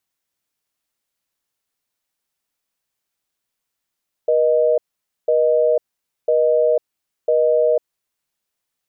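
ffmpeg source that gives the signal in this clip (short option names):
-f lavfi -i "aevalsrc='0.168*(sin(2*PI*480*t)+sin(2*PI*620*t))*clip(min(mod(t,1),0.5-mod(t,1))/0.005,0,1)':d=3.68:s=44100"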